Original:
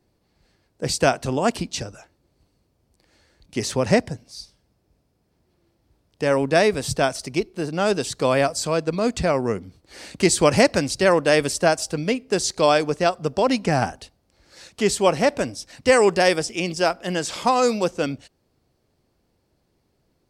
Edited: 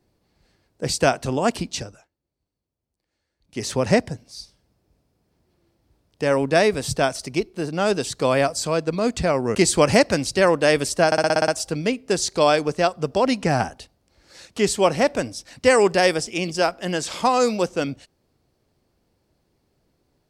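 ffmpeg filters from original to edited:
ffmpeg -i in.wav -filter_complex "[0:a]asplit=11[link_01][link_02][link_03][link_04][link_05][link_06][link_07][link_08][link_09][link_10][link_11];[link_01]atrim=end=2.09,asetpts=PTS-STARTPTS,afade=type=out:start_time=1.76:duration=0.33:silence=0.125893[link_12];[link_02]atrim=start=2.09:end=3.39,asetpts=PTS-STARTPTS,volume=-18dB[link_13];[link_03]atrim=start=3.39:end=9.552,asetpts=PTS-STARTPTS,afade=type=in:duration=0.33:silence=0.125893[link_14];[link_04]atrim=start=10.188:end=11.762[link_15];[link_05]atrim=start=11.698:end=11.762[link_16];[link_06]atrim=start=11.698:end=11.762[link_17];[link_07]atrim=start=11.698:end=11.762[link_18];[link_08]atrim=start=11.698:end=11.762[link_19];[link_09]atrim=start=11.698:end=11.762[link_20];[link_10]atrim=start=11.698:end=11.762[link_21];[link_11]atrim=start=11.698[link_22];[link_12][link_13][link_14]concat=n=3:v=0:a=1[link_23];[link_23][link_15]acrossfade=duration=0.004:curve1=hsin:curve2=hsin[link_24];[link_24][link_16]acrossfade=duration=0.004:curve1=hsin:curve2=hsin[link_25];[link_25][link_17]acrossfade=duration=0.004:curve1=hsin:curve2=hsin[link_26];[link_26][link_18]acrossfade=duration=0.004:curve1=hsin:curve2=hsin[link_27];[link_27][link_19]acrossfade=duration=0.004:curve1=hsin:curve2=hsin[link_28];[link_28][link_20]acrossfade=duration=0.004:curve1=hsin:curve2=hsin[link_29];[link_29][link_21]acrossfade=duration=0.004:curve1=hsin:curve2=hsin[link_30];[link_30][link_22]acrossfade=duration=0.004:curve1=hsin:curve2=hsin" out.wav

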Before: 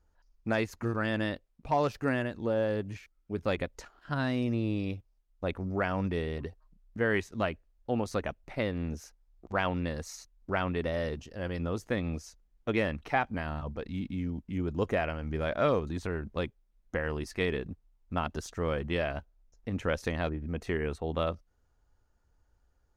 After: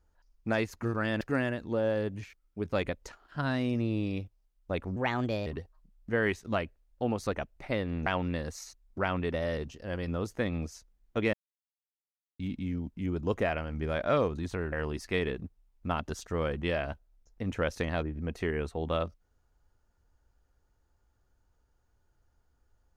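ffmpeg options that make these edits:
ffmpeg -i in.wav -filter_complex "[0:a]asplit=8[link_01][link_02][link_03][link_04][link_05][link_06][link_07][link_08];[link_01]atrim=end=1.212[link_09];[link_02]atrim=start=1.938:end=5.694[link_10];[link_03]atrim=start=5.69:end=6.34,asetpts=PTS-STARTPTS,asetrate=56889,aresample=44100[link_11];[link_04]atrim=start=6.336:end=8.942[link_12];[link_05]atrim=start=9.578:end=12.85,asetpts=PTS-STARTPTS,afade=type=out:start_time=3.268:duration=0.004:curve=hsin[link_13];[link_06]atrim=start=12.85:end=13.91,asetpts=PTS-STARTPTS,volume=0[link_14];[link_07]atrim=start=13.91:end=16.242,asetpts=PTS-STARTPTS,afade=type=in:duration=0.004:curve=hsin[link_15];[link_08]atrim=start=16.988[link_16];[link_09][link_10]acrossfade=duration=0.004:curve1=hsin:curve2=hsin[link_17];[link_17][link_11]acrossfade=duration=0.004:curve1=hsin:curve2=hsin[link_18];[link_18][link_12]acrossfade=duration=0.004:curve1=hsin:curve2=hsin[link_19];[link_13][link_14][link_15]concat=n=3:v=0:a=1[link_20];[link_19][link_20]acrossfade=duration=0.004:curve1=hsin:curve2=hsin[link_21];[link_21][link_16]acrossfade=duration=0.004:curve1=hsin:curve2=hsin" out.wav

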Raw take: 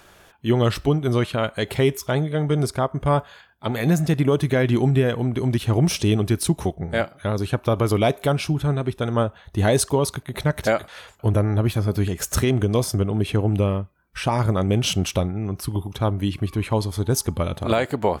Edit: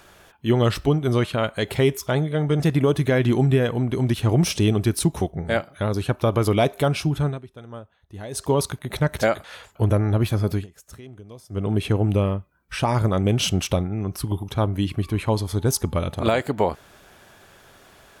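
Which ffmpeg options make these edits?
ffmpeg -i in.wav -filter_complex "[0:a]asplit=6[link_01][link_02][link_03][link_04][link_05][link_06];[link_01]atrim=end=2.602[link_07];[link_02]atrim=start=4.038:end=8.87,asetpts=PTS-STARTPTS,afade=type=out:start_time=4.622:duration=0.21:silence=0.141254[link_08];[link_03]atrim=start=8.87:end=9.75,asetpts=PTS-STARTPTS,volume=-17dB[link_09];[link_04]atrim=start=9.75:end=12.11,asetpts=PTS-STARTPTS,afade=type=in:duration=0.21:silence=0.141254,afade=type=out:start_time=2.21:duration=0.15:silence=0.0794328[link_10];[link_05]atrim=start=12.11:end=12.94,asetpts=PTS-STARTPTS,volume=-22dB[link_11];[link_06]atrim=start=12.94,asetpts=PTS-STARTPTS,afade=type=in:duration=0.15:silence=0.0794328[link_12];[link_08][link_09][link_10][link_11][link_12]concat=n=5:v=0:a=1[link_13];[link_07][link_13]acrossfade=duration=0.004:curve1=hsin:curve2=hsin" out.wav

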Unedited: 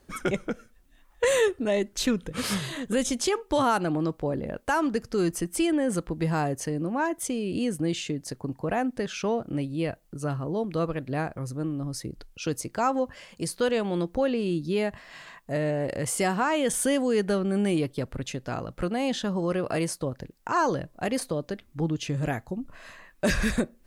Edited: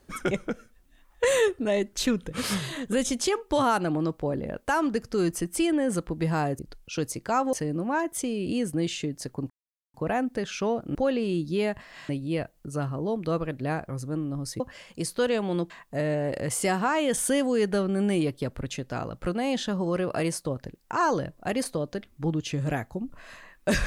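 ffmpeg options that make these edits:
ffmpeg -i in.wav -filter_complex "[0:a]asplit=8[link_01][link_02][link_03][link_04][link_05][link_06][link_07][link_08];[link_01]atrim=end=6.592[link_09];[link_02]atrim=start=12.078:end=13.022[link_10];[link_03]atrim=start=6.588:end=8.56,asetpts=PTS-STARTPTS,afade=type=out:start_time=1.968:duration=0.004:curve=hsin,apad=pad_dur=0.44[link_11];[link_04]atrim=start=8.56:end=9.572,asetpts=PTS-STARTPTS,afade=type=in:duration=0.004:curve=hsin[link_12];[link_05]atrim=start=14.118:end=15.262[link_13];[link_06]atrim=start=9.568:end=12.082[link_14];[link_07]atrim=start=13.018:end=14.122[link_15];[link_08]atrim=start=15.258[link_16];[link_09][link_10]acrossfade=duration=0.004:curve1=hsin:curve2=hsin[link_17];[link_11][link_12]concat=n=2:v=0:a=1[link_18];[link_17][link_18]acrossfade=duration=0.004:curve1=hsin:curve2=hsin[link_19];[link_19][link_13]acrossfade=duration=0.004:curve1=hsin:curve2=hsin[link_20];[link_20][link_14]acrossfade=duration=0.004:curve1=hsin:curve2=hsin[link_21];[link_21][link_15]acrossfade=duration=0.004:curve1=hsin:curve2=hsin[link_22];[link_22][link_16]acrossfade=duration=0.004:curve1=hsin:curve2=hsin" out.wav

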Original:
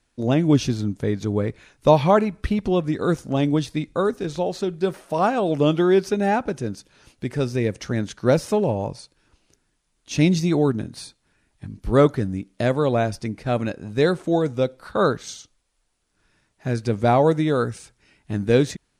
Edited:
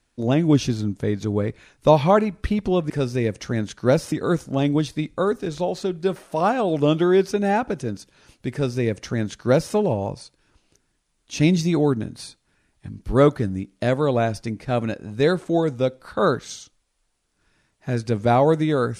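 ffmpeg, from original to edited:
ffmpeg -i in.wav -filter_complex "[0:a]asplit=3[link_01][link_02][link_03];[link_01]atrim=end=2.902[link_04];[link_02]atrim=start=7.298:end=8.522[link_05];[link_03]atrim=start=2.898[link_06];[link_04][link_05]acrossfade=duration=0.004:curve1=hsin:curve2=hsin[link_07];[link_07][link_06]acrossfade=duration=0.004:curve1=hsin:curve2=hsin" out.wav

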